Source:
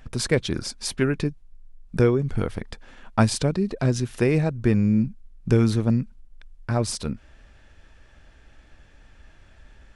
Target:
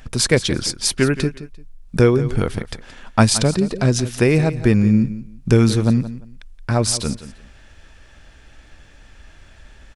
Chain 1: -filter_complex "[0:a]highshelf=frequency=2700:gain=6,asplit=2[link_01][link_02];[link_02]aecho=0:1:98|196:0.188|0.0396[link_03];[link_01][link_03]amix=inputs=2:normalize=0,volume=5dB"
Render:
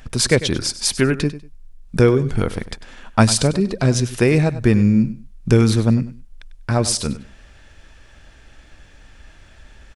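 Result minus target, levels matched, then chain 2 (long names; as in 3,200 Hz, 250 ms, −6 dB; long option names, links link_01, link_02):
echo 75 ms early
-filter_complex "[0:a]highshelf=frequency=2700:gain=6,asplit=2[link_01][link_02];[link_02]aecho=0:1:173|346:0.188|0.0396[link_03];[link_01][link_03]amix=inputs=2:normalize=0,volume=5dB"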